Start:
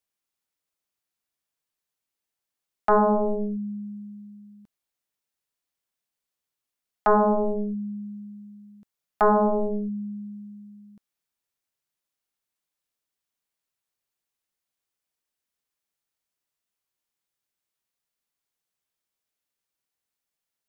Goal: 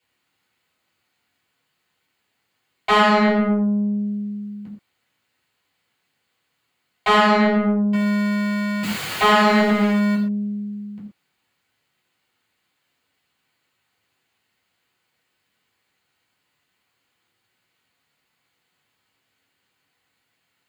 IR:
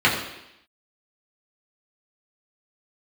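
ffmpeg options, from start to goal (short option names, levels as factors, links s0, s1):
-filter_complex "[0:a]asettb=1/sr,asplit=3[s0][s1][s2];[s0]atrim=end=7.934[s3];[s1]atrim=start=7.93:end=10.15,asetpts=PTS-STARTPTS,afade=t=in:d=0.004:c=qsin,afade=t=out:st=2.216:d=0.004:c=qsin,aeval=exprs='val(0)+0.5*0.0178*sgn(val(0))':c=same[s4];[s2]atrim=start=10.146[s5];[s3][s4]acrossfade=d=0.004:c1=hsin:c2=qsin[s6];[s6][s5]acrossfade=d=0.004:c1=qsin:c2=hsin,aeval=exprs='(tanh(35.5*val(0)+0.15)-tanh(0.15))/35.5':c=same[s7];[1:a]atrim=start_sample=2205,atrim=end_sample=6174[s8];[s7][s8]afir=irnorm=-1:irlink=0"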